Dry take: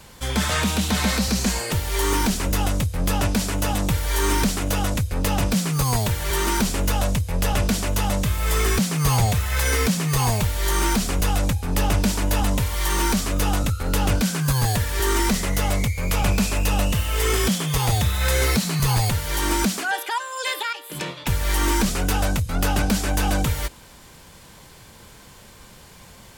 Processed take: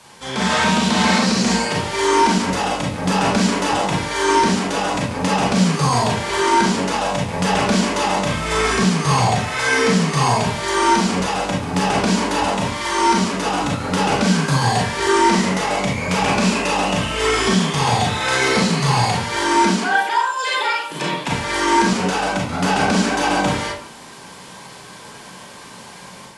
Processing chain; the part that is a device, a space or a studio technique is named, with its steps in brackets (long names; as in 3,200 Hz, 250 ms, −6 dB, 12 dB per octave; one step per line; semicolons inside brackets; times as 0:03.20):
filmed off a television (band-pass filter 190–6,900 Hz; parametric band 950 Hz +4 dB 0.56 octaves; convolution reverb RT60 0.55 s, pre-delay 30 ms, DRR −3 dB; white noise bed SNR 27 dB; automatic gain control gain up to 6 dB; level −2 dB; AAC 96 kbit/s 24,000 Hz)